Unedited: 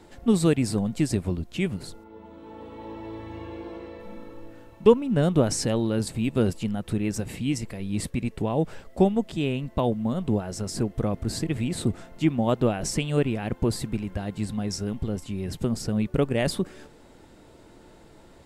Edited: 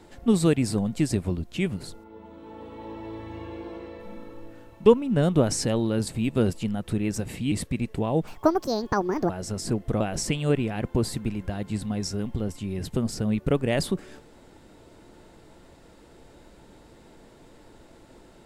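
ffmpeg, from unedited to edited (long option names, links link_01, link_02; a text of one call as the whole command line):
ffmpeg -i in.wav -filter_complex "[0:a]asplit=5[link_01][link_02][link_03][link_04][link_05];[link_01]atrim=end=7.522[link_06];[link_02]atrim=start=7.948:end=8.704[link_07];[link_03]atrim=start=8.7:end=10.39,asetpts=PTS-STARTPTS,asetrate=72765,aresample=44100,atrim=end_sample=45169,asetpts=PTS-STARTPTS[link_08];[link_04]atrim=start=10.386:end=11.102[link_09];[link_05]atrim=start=12.678[link_10];[link_06][link_07]acrossfade=duration=0.004:curve1=hsin:curve2=hsin[link_11];[link_11][link_08]acrossfade=duration=0.004:curve1=hsin:curve2=hsin[link_12];[link_12][link_09]acrossfade=duration=0.004:curve1=hsin:curve2=hsin[link_13];[link_13][link_10]acrossfade=duration=0.004:curve1=hsin:curve2=hsin" out.wav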